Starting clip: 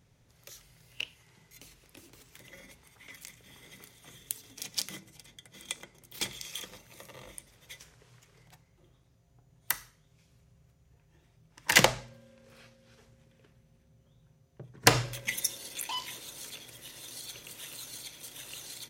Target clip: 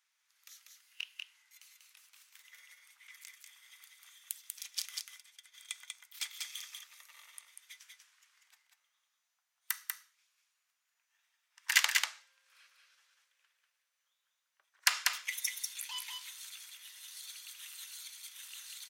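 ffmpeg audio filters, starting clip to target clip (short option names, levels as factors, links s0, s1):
-af "highpass=f=1200:w=0.5412,highpass=f=1200:w=1.3066,aecho=1:1:192:0.668,volume=0.562"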